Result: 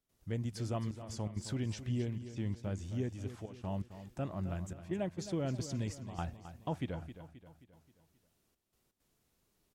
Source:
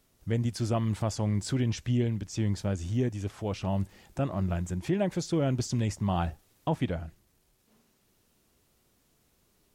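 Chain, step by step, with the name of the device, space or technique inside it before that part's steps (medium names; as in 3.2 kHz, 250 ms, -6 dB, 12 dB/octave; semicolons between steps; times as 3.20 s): trance gate with a delay (trance gate ".xxxxxxxxx..xx" 165 bpm -12 dB; feedback delay 265 ms, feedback 48%, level -12 dB); trim -8.5 dB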